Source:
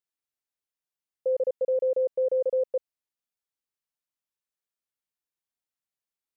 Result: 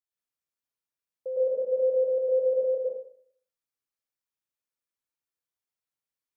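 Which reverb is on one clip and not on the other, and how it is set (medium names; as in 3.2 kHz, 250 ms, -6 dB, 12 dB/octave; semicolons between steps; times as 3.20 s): plate-style reverb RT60 0.58 s, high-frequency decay 0.75×, pre-delay 95 ms, DRR -6 dB; trim -8 dB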